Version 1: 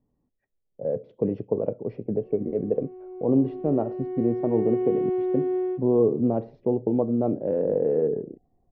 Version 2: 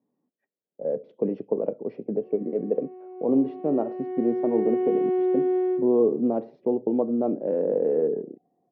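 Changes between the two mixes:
background: send +11.5 dB; master: add high-pass 190 Hz 24 dB/octave

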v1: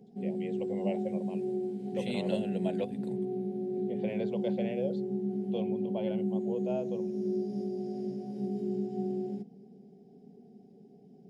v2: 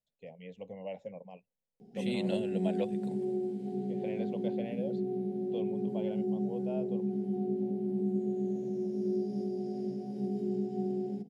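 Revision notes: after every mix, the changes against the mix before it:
first voice -4.5 dB; background: entry +1.80 s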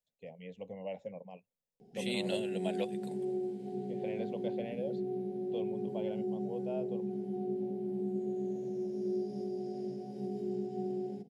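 second voice: add tilt EQ +2.5 dB/octave; background: add peaking EQ 220 Hz -7 dB 0.82 oct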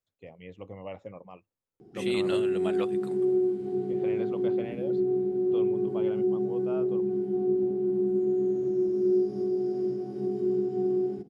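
background: add bass shelf 230 Hz +4.5 dB; master: remove static phaser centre 330 Hz, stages 6

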